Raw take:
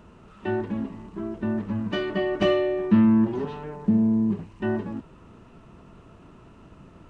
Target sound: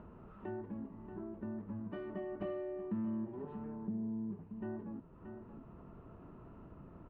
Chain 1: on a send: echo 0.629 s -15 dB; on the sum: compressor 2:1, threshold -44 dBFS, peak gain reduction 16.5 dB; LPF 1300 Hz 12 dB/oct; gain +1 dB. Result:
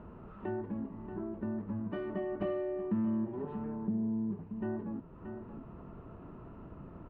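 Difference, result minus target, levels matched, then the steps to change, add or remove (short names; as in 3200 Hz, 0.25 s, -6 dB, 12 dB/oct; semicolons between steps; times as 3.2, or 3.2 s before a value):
compressor: peak gain reduction -5.5 dB
change: compressor 2:1, threshold -55.5 dBFS, peak gain reduction 22 dB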